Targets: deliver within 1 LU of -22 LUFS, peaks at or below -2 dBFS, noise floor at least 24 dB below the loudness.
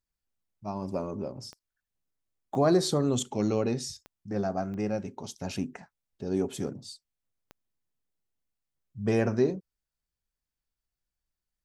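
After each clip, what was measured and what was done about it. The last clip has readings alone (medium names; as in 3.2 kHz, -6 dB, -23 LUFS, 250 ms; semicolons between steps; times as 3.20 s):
clicks found 5; loudness -30.0 LUFS; peak level -12.0 dBFS; loudness target -22.0 LUFS
-> de-click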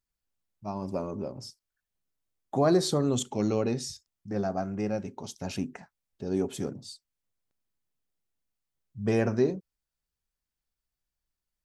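clicks found 0; loudness -30.0 LUFS; peak level -12.0 dBFS; loudness target -22.0 LUFS
-> trim +8 dB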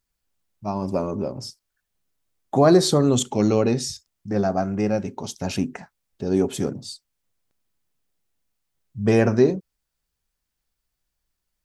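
loudness -22.0 LUFS; peak level -4.0 dBFS; noise floor -80 dBFS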